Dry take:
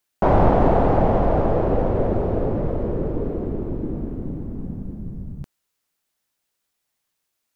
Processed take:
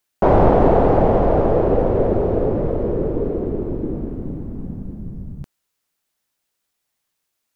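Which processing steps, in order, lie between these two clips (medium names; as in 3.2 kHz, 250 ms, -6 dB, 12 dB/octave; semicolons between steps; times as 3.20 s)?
dynamic bell 430 Hz, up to +5 dB, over -34 dBFS, Q 1.5; trim +1 dB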